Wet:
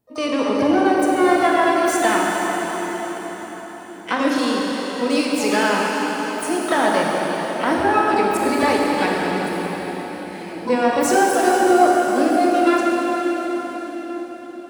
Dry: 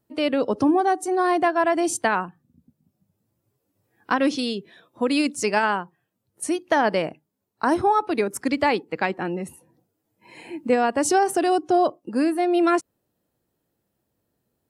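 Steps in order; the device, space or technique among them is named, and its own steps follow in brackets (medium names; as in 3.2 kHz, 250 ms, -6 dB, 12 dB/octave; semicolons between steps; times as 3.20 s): shimmer-style reverb (harmony voices +12 st -9 dB; reverberation RT60 5.5 s, pre-delay 24 ms, DRR -3 dB); trim -1 dB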